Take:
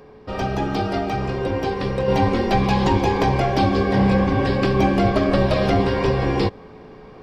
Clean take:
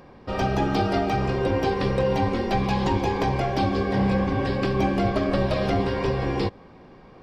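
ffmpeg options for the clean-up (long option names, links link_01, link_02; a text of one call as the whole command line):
ffmpeg -i in.wav -af "bandreject=frequency=430:width=30,asetnsamples=nb_out_samples=441:pad=0,asendcmd='2.08 volume volume -5dB',volume=0dB" out.wav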